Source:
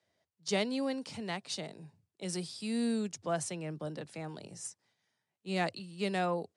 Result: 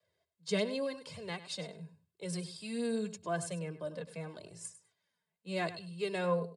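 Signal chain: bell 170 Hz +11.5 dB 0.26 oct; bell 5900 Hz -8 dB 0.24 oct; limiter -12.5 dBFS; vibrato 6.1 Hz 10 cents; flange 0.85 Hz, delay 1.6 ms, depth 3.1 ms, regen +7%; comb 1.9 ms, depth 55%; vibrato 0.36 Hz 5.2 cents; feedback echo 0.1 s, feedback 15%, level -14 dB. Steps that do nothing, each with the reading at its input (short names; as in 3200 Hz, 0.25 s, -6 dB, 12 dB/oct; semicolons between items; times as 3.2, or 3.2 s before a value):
limiter -12.5 dBFS: input peak -17.5 dBFS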